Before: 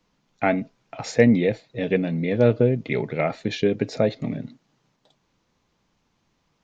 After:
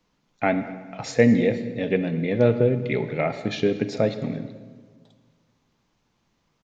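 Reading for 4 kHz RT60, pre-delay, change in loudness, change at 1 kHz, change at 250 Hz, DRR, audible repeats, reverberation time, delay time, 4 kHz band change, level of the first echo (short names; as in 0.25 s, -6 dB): 1.1 s, 36 ms, -0.5 dB, -0.5 dB, -0.5 dB, 10.0 dB, 1, 1.5 s, 0.219 s, -0.5 dB, -21.0 dB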